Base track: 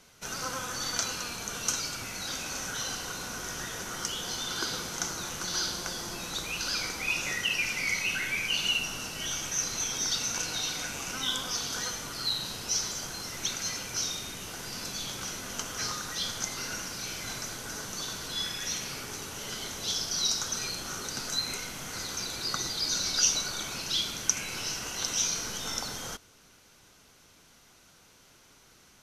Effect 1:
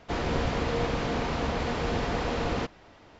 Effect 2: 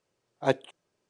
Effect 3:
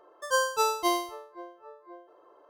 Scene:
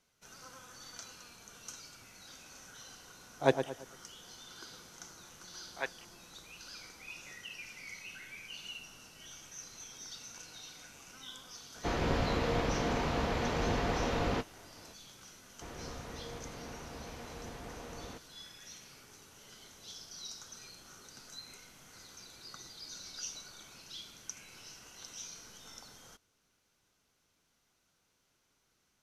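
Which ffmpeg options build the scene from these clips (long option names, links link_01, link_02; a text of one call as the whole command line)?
ffmpeg -i bed.wav -i cue0.wav -i cue1.wav -filter_complex "[2:a]asplit=2[link_01][link_02];[1:a]asplit=2[link_03][link_04];[0:a]volume=-17.5dB[link_05];[link_01]asplit=2[link_06][link_07];[link_07]adelay=112,lowpass=frequency=2000:poles=1,volume=-8.5dB,asplit=2[link_08][link_09];[link_09]adelay=112,lowpass=frequency=2000:poles=1,volume=0.39,asplit=2[link_10][link_11];[link_11]adelay=112,lowpass=frequency=2000:poles=1,volume=0.39,asplit=2[link_12][link_13];[link_13]adelay=112,lowpass=frequency=2000:poles=1,volume=0.39[link_14];[link_06][link_08][link_10][link_12][link_14]amix=inputs=5:normalize=0[link_15];[link_02]bandpass=frequency=2000:width_type=q:width=1.7:csg=0[link_16];[link_03]asplit=2[link_17][link_18];[link_18]adelay=20,volume=-11.5dB[link_19];[link_17][link_19]amix=inputs=2:normalize=0[link_20];[link_15]atrim=end=1.09,asetpts=PTS-STARTPTS,volume=-2dB,afade=type=in:duration=0.004:curve=hsin,afade=type=out:start_time=1.086:duration=0.004:curve=hsin,adelay=2990[link_21];[link_16]atrim=end=1.09,asetpts=PTS-STARTPTS,volume=-1.5dB,afade=type=in:duration=0.004:curve=hsin,afade=type=out:start_time=1.086:duration=0.004:curve=hsin,adelay=5340[link_22];[link_20]atrim=end=3.19,asetpts=PTS-STARTPTS,volume=-3.5dB,afade=type=in:duration=0.004:curve=hsin,afade=type=out:start_time=3.186:duration=0.004:curve=hsin,adelay=11750[link_23];[link_04]atrim=end=3.19,asetpts=PTS-STARTPTS,volume=-17.5dB,afade=type=in:duration=0.004:curve=hsin,afade=type=out:start_time=3.186:duration=0.004:curve=hsin,adelay=15520[link_24];[link_05][link_21][link_22][link_23][link_24]amix=inputs=5:normalize=0" out.wav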